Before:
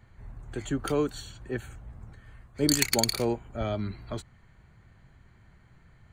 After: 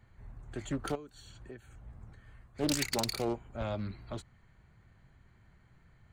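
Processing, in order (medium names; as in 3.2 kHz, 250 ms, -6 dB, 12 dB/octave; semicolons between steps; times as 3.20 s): 0.95–1.86 s: compression 12:1, threshold -39 dBFS, peak gain reduction 18 dB; hard clipper -18 dBFS, distortion -13 dB; loudspeaker Doppler distortion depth 0.42 ms; trim -5 dB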